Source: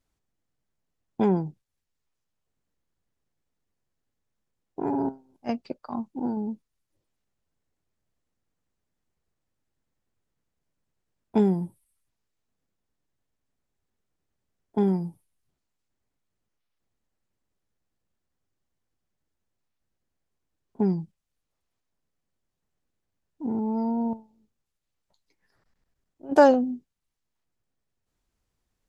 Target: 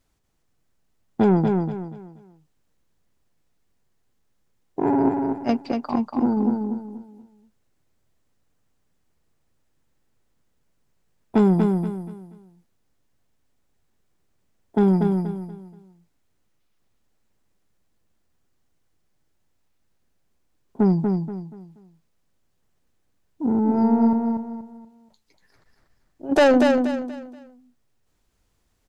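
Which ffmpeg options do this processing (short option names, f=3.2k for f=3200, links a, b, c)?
-filter_complex "[0:a]asoftclip=type=tanh:threshold=-19dB,asplit=2[a][b];[b]aecho=0:1:239|478|717|956:0.596|0.191|0.061|0.0195[c];[a][c]amix=inputs=2:normalize=0,volume=8dB"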